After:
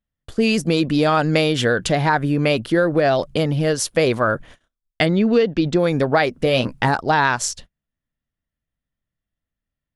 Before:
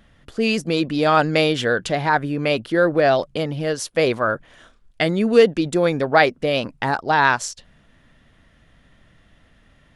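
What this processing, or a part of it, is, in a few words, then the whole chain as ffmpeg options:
ASMR close-microphone chain: -filter_complex "[0:a]asplit=3[a][b][c];[a]afade=t=out:st=5.05:d=0.02[d];[b]lowpass=f=5.2k:w=0.5412,lowpass=f=5.2k:w=1.3066,afade=t=in:st=5.05:d=0.02,afade=t=out:st=5.78:d=0.02[e];[c]afade=t=in:st=5.78:d=0.02[f];[d][e][f]amix=inputs=3:normalize=0,agate=range=-38dB:threshold=-43dB:ratio=16:detection=peak,lowshelf=f=210:g=6.5,acompressor=threshold=-16dB:ratio=6,highshelf=f=7.1k:g=6,asettb=1/sr,asplit=3[g][h][i];[g]atrim=end=6.444[j];[h]atrim=start=6.44:end=6.88,asetpts=PTS-STARTPTS,afade=t=in:d=0.004:c=qsin,afade=t=out:st=0.436:d=0.004:c=qsin,asplit=2[k][l];[l]adelay=16,volume=-7.5dB[m];[k][m]amix=inputs=2:normalize=0,atrim=end_sample=19404[n];[i]atrim=start=6.876[o];[j][n]acrossfade=d=0.004:c1=hsin:c2=qsin[p];[p][o]acrossfade=d=0.004:c1=qsin:c2=hsin,volume=3dB"

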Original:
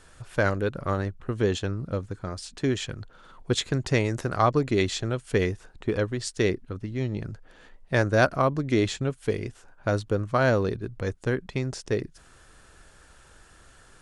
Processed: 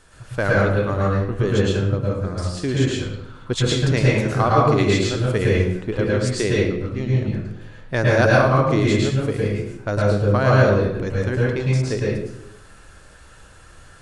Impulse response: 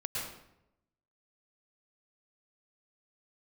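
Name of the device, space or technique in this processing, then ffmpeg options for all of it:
bathroom: -filter_complex "[1:a]atrim=start_sample=2205[a];[0:a][a]afir=irnorm=-1:irlink=0,volume=3dB"

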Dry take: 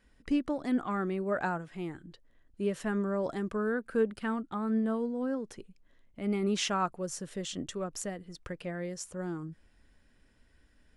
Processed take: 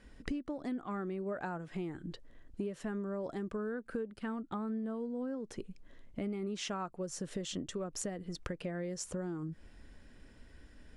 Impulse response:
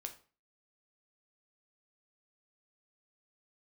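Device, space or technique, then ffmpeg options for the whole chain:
ASMR close-microphone chain: -af "lowpass=9k,lowshelf=f=200:g=3.5,equalizer=f=390:t=o:w=2.1:g=3.5,acompressor=threshold=-41dB:ratio=10,highshelf=f=8.9k:g=3.5,volume=5.5dB"

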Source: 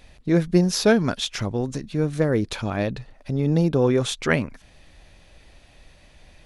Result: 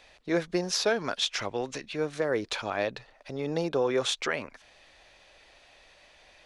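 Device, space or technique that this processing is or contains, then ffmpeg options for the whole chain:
DJ mixer with the lows and highs turned down: -filter_complex "[0:a]acrossover=split=410 7900:gain=0.126 1 0.2[a][b][c];[a][b][c]amix=inputs=3:normalize=0,alimiter=limit=-16.5dB:level=0:latency=1:release=117,asettb=1/sr,asplit=3[d][e][f];[d]atrim=end=1.414[g];[e]atrim=start=1.41:end=1.96,asetpts=PTS-STARTPTS,afade=t=in:d=0.004:c=qsin,afade=t=out:st=0.546:d=0.004:c=qsin,equalizer=f=2.5k:t=o:w=0.97:g=8[h];[f]atrim=start=1.956[i];[g][h]acrossfade=d=0.004:c1=hsin:c2=qsin[j];[j][i]acrossfade=d=0.004:c1=qsin:c2=hsin"

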